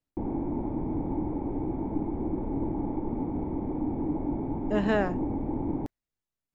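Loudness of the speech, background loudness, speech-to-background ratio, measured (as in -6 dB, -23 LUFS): -29.0 LUFS, -32.0 LUFS, 3.0 dB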